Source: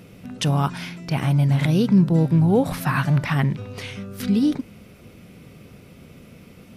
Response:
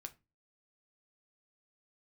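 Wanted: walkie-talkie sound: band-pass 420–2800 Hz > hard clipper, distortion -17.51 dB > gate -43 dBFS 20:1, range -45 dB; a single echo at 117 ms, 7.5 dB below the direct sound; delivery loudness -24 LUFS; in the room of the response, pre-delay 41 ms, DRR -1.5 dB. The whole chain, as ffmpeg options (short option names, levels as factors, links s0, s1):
-filter_complex "[0:a]aecho=1:1:117:0.422,asplit=2[s0][s1];[1:a]atrim=start_sample=2205,adelay=41[s2];[s1][s2]afir=irnorm=-1:irlink=0,volume=2.11[s3];[s0][s3]amix=inputs=2:normalize=0,highpass=420,lowpass=2800,asoftclip=type=hard:threshold=0.178,agate=range=0.00562:threshold=0.00708:ratio=20,volume=1.19"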